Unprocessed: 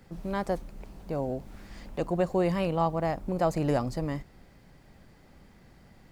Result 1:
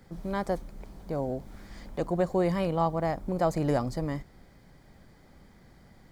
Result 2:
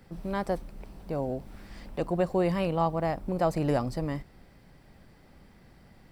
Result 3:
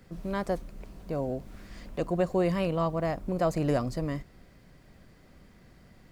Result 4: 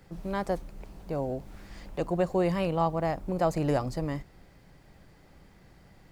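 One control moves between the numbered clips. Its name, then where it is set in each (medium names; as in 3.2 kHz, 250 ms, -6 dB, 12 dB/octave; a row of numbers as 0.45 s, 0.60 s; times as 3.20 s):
band-stop, frequency: 2.7 kHz, 6.7 kHz, 840 Hz, 230 Hz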